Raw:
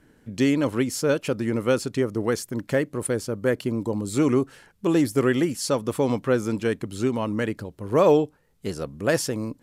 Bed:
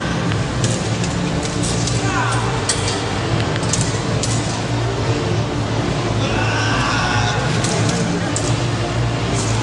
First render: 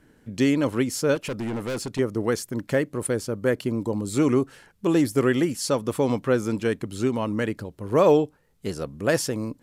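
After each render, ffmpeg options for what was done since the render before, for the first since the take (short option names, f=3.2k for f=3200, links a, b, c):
-filter_complex "[0:a]asettb=1/sr,asplit=3[a][b][c];[a]atrim=end=1.154[d];[b]atrim=start=1.15:end=1.99,asetpts=PTS-STARTPTS,afade=t=in:d=0.004:c=qsin,afade=t=out:st=0.836:d=0.004:c=qsin,asoftclip=type=hard:threshold=-26dB[e];[c]atrim=start=1.986[f];[d][e]acrossfade=d=0.004:c1=hsin:c2=qsin[g];[g][f]acrossfade=d=0.004:c1=qsin:c2=hsin"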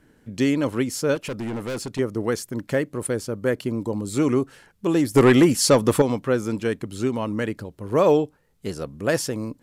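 -filter_complex "[0:a]asettb=1/sr,asplit=3[a][b][c];[a]atrim=end=5.144[d];[b]atrim=start=5.14:end=6.02,asetpts=PTS-STARTPTS,afade=t=in:d=0.004:c=qsin,afade=t=out:st=0.876:d=0.004:c=qsin,aeval=exprs='0.398*sin(PI/2*1.78*val(0)/0.398)':c=same[e];[c]atrim=start=6.016[f];[d][e]acrossfade=d=0.004:c1=hsin:c2=qsin[g];[g][f]acrossfade=d=0.004:c1=qsin:c2=hsin"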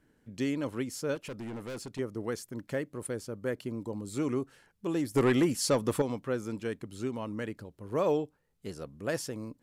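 -af "volume=-10.5dB"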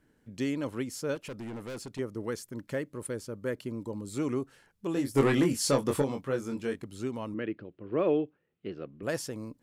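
-filter_complex "[0:a]asettb=1/sr,asplit=3[a][b][c];[a]atrim=end=2.144[d];[b]atrim=start=2.14:end=4.08,asetpts=PTS-STARTPTS,afade=t=in:d=0.004:c=qsin,afade=t=out:st=1.936:d=0.004:c=qsin,asuperstop=centerf=740:order=4:qfactor=6.9[e];[c]atrim=start=4.076[f];[d][e]acrossfade=d=0.004:c1=hsin:c2=qsin[g];[g][f]acrossfade=d=0.004:c1=qsin:c2=hsin,asettb=1/sr,asplit=3[h][i][j];[h]atrim=end=4.934[k];[i]atrim=start=4.93:end=6.84,asetpts=PTS-STARTPTS,afade=t=in:d=0.004:c=qsin,afade=t=out:st=1.906:d=0.004:c=qsin,asplit=2[l][m];[m]adelay=22,volume=-5dB[n];[l][n]amix=inputs=2:normalize=0,atrim=end_sample=84231[o];[j]atrim=start=6.836[p];[k][o]acrossfade=d=0.004:c1=hsin:c2=qsin[q];[q][p]acrossfade=d=0.004:c1=qsin:c2=hsin,asettb=1/sr,asplit=3[r][s][t];[r]atrim=end=7.344[u];[s]atrim=start=7.34:end=9.03,asetpts=PTS-STARTPTS,afade=t=in:d=0.004:c=qsin,afade=t=out:st=1.686:d=0.004:c=qsin,highpass=120,equalizer=f=340:t=q:w=4:g=8,equalizer=f=910:t=q:w=4:g=-8,equalizer=f=2.7k:t=q:w=4:g=4,lowpass=f=3.2k:w=0.5412,lowpass=f=3.2k:w=1.3066[v];[t]atrim=start=9.026[w];[u][v]acrossfade=d=0.004:c1=hsin:c2=qsin[x];[x][w]acrossfade=d=0.004:c1=qsin:c2=hsin"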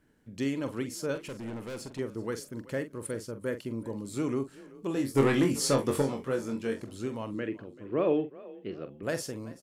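-filter_complex "[0:a]asplit=2[a][b];[b]adelay=44,volume=-10.5dB[c];[a][c]amix=inputs=2:normalize=0,asplit=4[d][e][f][g];[e]adelay=383,afreqshift=31,volume=-20dB[h];[f]adelay=766,afreqshift=62,volume=-28.2dB[i];[g]adelay=1149,afreqshift=93,volume=-36.4dB[j];[d][h][i][j]amix=inputs=4:normalize=0"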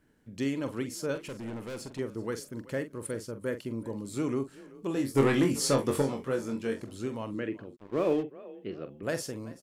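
-filter_complex "[0:a]asplit=3[a][b][c];[a]afade=t=out:st=7.75:d=0.02[d];[b]aeval=exprs='sgn(val(0))*max(abs(val(0))-0.00668,0)':c=same,afade=t=in:st=7.75:d=0.02,afade=t=out:st=8.22:d=0.02[e];[c]afade=t=in:st=8.22:d=0.02[f];[d][e][f]amix=inputs=3:normalize=0"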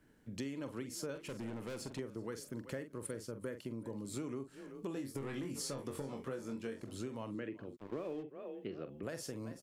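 -filter_complex "[0:a]acrossover=split=110[a][b];[b]alimiter=limit=-20.5dB:level=0:latency=1:release=175[c];[a][c]amix=inputs=2:normalize=0,acompressor=threshold=-39dB:ratio=6"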